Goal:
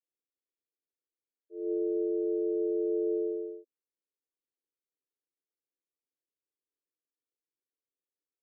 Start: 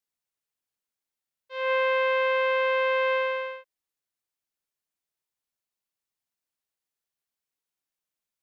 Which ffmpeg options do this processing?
ffmpeg -i in.wav -filter_complex "[0:a]asplit=2[link_01][link_02];[link_02]asetrate=22050,aresample=44100,atempo=2,volume=-1dB[link_03];[link_01][link_03]amix=inputs=2:normalize=0,aeval=exprs='val(0)*sin(2*PI*84*n/s)':channel_layout=same,asuperpass=centerf=370:order=12:qfactor=1.3" out.wav

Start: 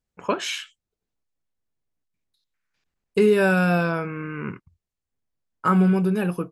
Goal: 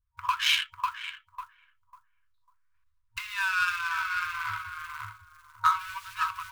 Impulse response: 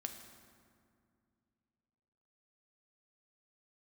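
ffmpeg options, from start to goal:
-filter_complex "[0:a]flanger=delay=0.5:depth=7.3:regen=-51:speed=0.32:shape=triangular,asettb=1/sr,asplit=3[link_01][link_02][link_03];[link_01]atrim=end=3.584[link_04];[link_02]atrim=start=3.58:end=5.9,asetpts=PTS-STARTPTS,afade=type=in:duration=0.004:curve=qsin,afade=type=out:start_time=2.316:duration=0.004:curve=qsin,asplit=2[link_05][link_06];[link_06]adelay=40,volume=-7dB[link_07];[link_05][link_07]amix=inputs=2:normalize=0,atrim=end_sample=102312[link_08];[link_03]atrim=start=5.896[link_09];[link_04][link_08]acrossfade=duration=0.004:curve1=hsin:curve2=qsin[link_10];[link_10][link_09]acrossfade=duration=0.004:curve1=qsin:curve2=hsin,asplit=2[link_11][link_12];[link_12]adelay=547,lowpass=frequency=1600:poles=1,volume=-5dB,asplit=2[link_13][link_14];[link_14]adelay=547,lowpass=frequency=1600:poles=1,volume=0.28,asplit=2[link_15][link_16];[link_16]adelay=547,lowpass=frequency=1600:poles=1,volume=0.28,asplit=2[link_17][link_18];[link_18]adelay=547,lowpass=frequency=1600:poles=1,volume=0.28[link_19];[link_11][link_13][link_15][link_17][link_19]amix=inputs=5:normalize=0,adynamicsmooth=sensitivity=7.5:basefreq=1200,acrusher=bits=7:mode=log:mix=0:aa=0.000001,acompressor=threshold=-31dB:ratio=6,adynamicequalizer=threshold=0.00141:dfrequency=3200:dqfactor=1:tfrequency=3200:tqfactor=1:attack=5:release=100:ratio=0.375:range=2.5:mode=boostabove:tftype=bell,afftfilt=real='re*(1-between(b*sr/4096,110,940))':imag='im*(1-between(b*sr/4096,110,940))':win_size=4096:overlap=0.75,equalizer=frequency=740:width=1.3:gain=5.5,volume=9dB"

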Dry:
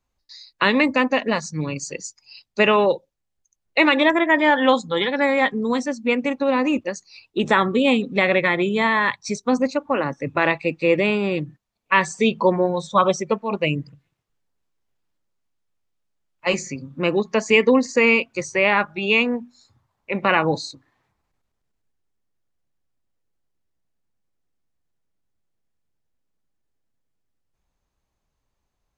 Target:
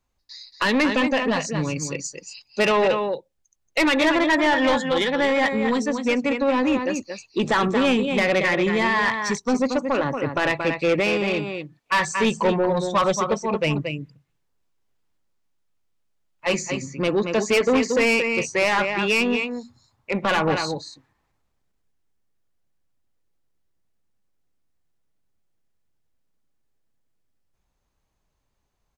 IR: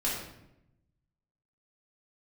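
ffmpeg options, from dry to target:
-filter_complex "[0:a]aecho=1:1:229:0.376,asoftclip=type=tanh:threshold=-15.5dB,asettb=1/sr,asplit=3[link_01][link_02][link_03];[link_01]atrim=end=11.004[link_04];[link_02]atrim=start=11:end=12.05,asetpts=PTS-STARTPTS,afade=type=in:duration=0.004:curve=qsin,afade=type=out:start_time=1.046:duration=0.004:curve=qsin,asplit=2[link_05][link_06];[link_06]highpass=frequency=720:poles=1,volume=8dB,asoftclip=type=tanh:threshold=-15.5dB[link_07];[link_05][link_07]amix=inputs=2:normalize=0,lowpass=frequency=7200:poles=1,volume=-6dB[link_08];[link_03]atrim=start=12.046[link_09];[link_04][link_08]acrossfade=duration=0.004:curve1=hsin:curve2=qsin[link_10];[link_10][link_09]acrossfade=duration=0.004:curve1=qsin:curve2=hsin,volume=1.5dB"

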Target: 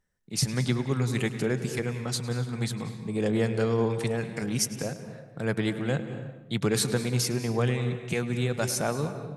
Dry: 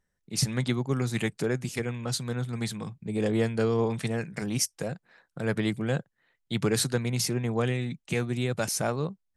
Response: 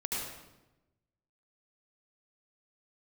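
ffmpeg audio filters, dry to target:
-filter_complex "[0:a]asplit=2[link_01][link_02];[1:a]atrim=start_sample=2205,highshelf=frequency=5700:gain=-7,adelay=105[link_03];[link_02][link_03]afir=irnorm=-1:irlink=0,volume=-12.5dB[link_04];[link_01][link_04]amix=inputs=2:normalize=0"

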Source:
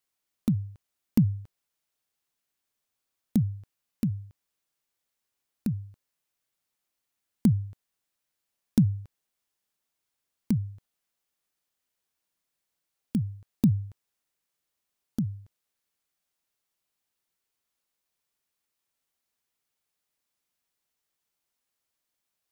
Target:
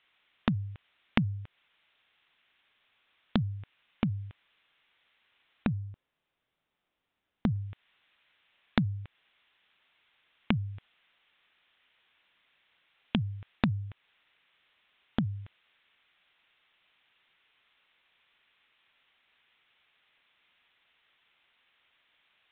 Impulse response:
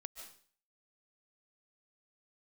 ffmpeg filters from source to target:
-af "aresample=8000,aresample=44100,acompressor=threshold=-37dB:ratio=4,asetnsamples=nb_out_samples=441:pad=0,asendcmd='5.68 equalizer g -2;7.56 equalizer g 14.5',equalizer=frequency=2500:width=0.44:gain=13.5,volume=8dB"

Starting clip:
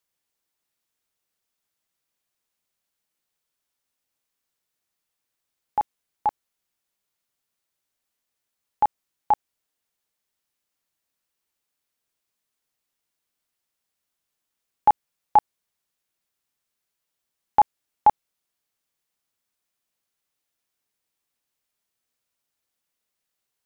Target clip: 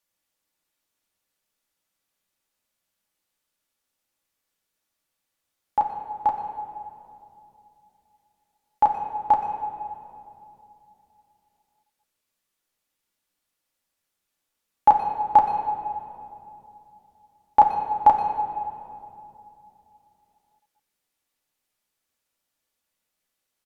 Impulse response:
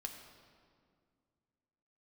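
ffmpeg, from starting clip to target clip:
-filter_complex "[0:a]asplit=2[link_01][link_02];[link_02]adelay=120,highpass=300,lowpass=3400,asoftclip=type=hard:threshold=-17dB,volume=-20dB[link_03];[link_01][link_03]amix=inputs=2:normalize=0[link_04];[1:a]atrim=start_sample=2205,asetrate=31311,aresample=44100[link_05];[link_04][link_05]afir=irnorm=-1:irlink=0,volume=3dB"

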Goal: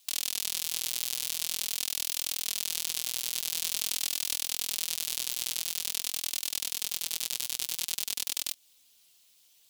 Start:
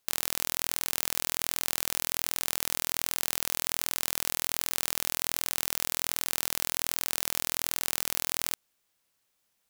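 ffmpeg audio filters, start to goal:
ffmpeg -i in.wav -filter_complex "[0:a]aeval=exprs='val(0)*sin(2*PI*160*n/s)':channel_layout=same,asplit=2[link_01][link_02];[link_02]alimiter=limit=-11.5dB:level=0:latency=1:release=211,volume=1.5dB[link_03];[link_01][link_03]amix=inputs=2:normalize=0,flanger=delay=3.3:depth=3.5:regen=20:speed=0.47:shape=sinusoidal,asoftclip=type=hard:threshold=-20dB,asettb=1/sr,asplit=3[link_04][link_05][link_06];[link_04]atrim=end=3.554[link_07];[link_05]atrim=start=3.55:end=4.4,asetpts=PTS-STARTPTS,afade=type=in:duration=0.004:curve=qsin,afade=type=out:start_time=0.846:duration=0.004:curve=qsin,aeval=exprs='0.1*(cos(1*acos(clip(val(0)/0.1,-1,1)))-cos(1*PI/2))+0.0178*(cos(5*acos(clip(val(0)/0.1,-1,1)))-cos(5*PI/2))':channel_layout=same[link_08];[link_06]atrim=start=4.396[link_09];[link_07][link_08]acrossfade=duration=0.004:curve1=hsin:curve2=qsin[link_10];[link_10][link_09]acrossfade=duration=0.004:curve1=qsin:curve2=hsin,highshelf=frequency=2300:width_type=q:width=1.5:gain=10.5,volume=2.5dB" out.wav

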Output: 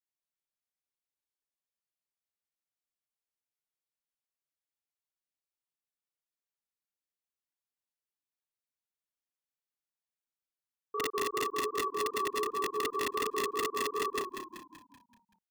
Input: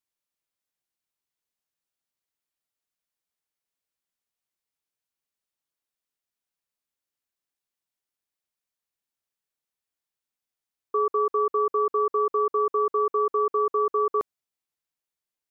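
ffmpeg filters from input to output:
ffmpeg -i in.wav -filter_complex "[0:a]flanger=delay=22.5:depth=5.7:speed=2.7,aeval=exprs='(mod(8.41*val(0)+1,2)-1)/8.41':channel_layout=same,asplit=7[link_01][link_02][link_03][link_04][link_05][link_06][link_07];[link_02]adelay=191,afreqshift=-36,volume=-8dB[link_08];[link_03]adelay=382,afreqshift=-72,volume=-14dB[link_09];[link_04]adelay=573,afreqshift=-108,volume=-20dB[link_10];[link_05]adelay=764,afreqshift=-144,volume=-26.1dB[link_11];[link_06]adelay=955,afreqshift=-180,volume=-32.1dB[link_12];[link_07]adelay=1146,afreqshift=-216,volume=-38.1dB[link_13];[link_01][link_08][link_09][link_10][link_11][link_12][link_13]amix=inputs=7:normalize=0,volume=-7dB" out.wav

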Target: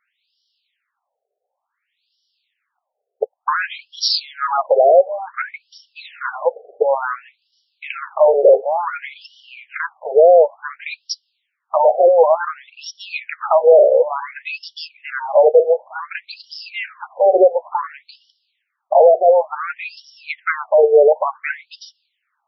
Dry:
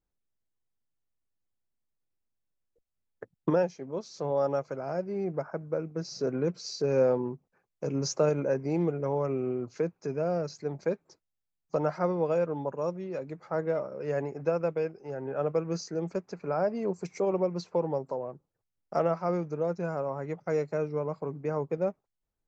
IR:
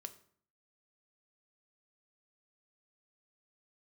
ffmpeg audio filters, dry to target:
-af "highshelf=frequency=3500:gain=10.5,apsyclip=31.5dB,afftfilt=real='re*between(b*sr/1024,540*pow(4100/540,0.5+0.5*sin(2*PI*0.56*pts/sr))/1.41,540*pow(4100/540,0.5+0.5*sin(2*PI*0.56*pts/sr))*1.41)':imag='im*between(b*sr/1024,540*pow(4100/540,0.5+0.5*sin(2*PI*0.56*pts/sr))/1.41,540*pow(4100/540,0.5+0.5*sin(2*PI*0.56*pts/sr))*1.41)':win_size=1024:overlap=0.75,volume=-3.5dB"

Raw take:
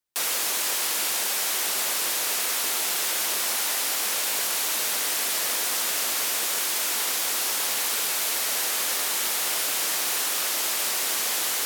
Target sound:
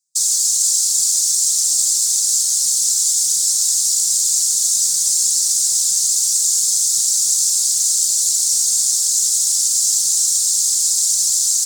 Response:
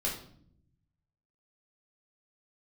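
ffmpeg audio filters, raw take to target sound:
-af "aexciter=amount=9:drive=8.8:freq=4100,afftfilt=real='hypot(re,im)*cos(2*PI*random(0))':imag='hypot(re,im)*sin(2*PI*random(1))':win_size=512:overlap=0.75,firequalizer=gain_entry='entry(110,0);entry(150,12);entry(230,-8);entry(340,-11);entry(1100,-13);entry(2200,-14);entry(4100,-5);entry(7400,1);entry(12000,-21)':delay=0.05:min_phase=1,volume=-1dB"

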